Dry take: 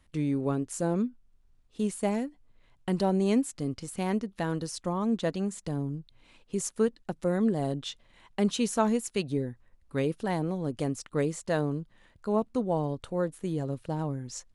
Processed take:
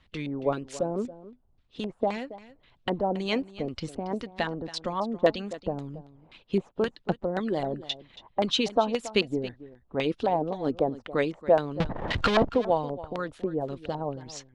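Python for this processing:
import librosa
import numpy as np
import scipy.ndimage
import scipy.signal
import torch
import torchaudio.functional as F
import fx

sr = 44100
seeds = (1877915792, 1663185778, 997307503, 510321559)

p1 = fx.power_curve(x, sr, exponent=0.35, at=(11.8, 12.49))
p2 = fx.filter_lfo_lowpass(p1, sr, shape='square', hz=1.9, low_hz=750.0, high_hz=3700.0, q=1.8)
p3 = fx.hpss(p2, sr, part='harmonic', gain_db=-13)
p4 = p3 + fx.echo_single(p3, sr, ms=277, db=-16.5, dry=0)
y = p4 * librosa.db_to_amplitude(6.5)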